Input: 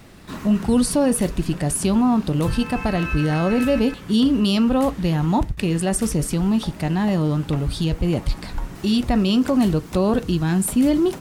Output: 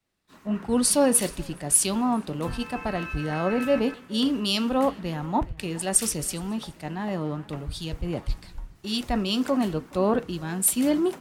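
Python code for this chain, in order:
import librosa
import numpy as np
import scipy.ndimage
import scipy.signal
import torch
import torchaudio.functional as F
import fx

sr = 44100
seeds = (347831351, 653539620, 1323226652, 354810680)

p1 = fx.low_shelf(x, sr, hz=230.0, db=-11.0)
p2 = p1 + fx.echo_single(p1, sr, ms=422, db=-19.5, dry=0)
p3 = fx.band_widen(p2, sr, depth_pct=100)
y = F.gain(torch.from_numpy(p3), -2.5).numpy()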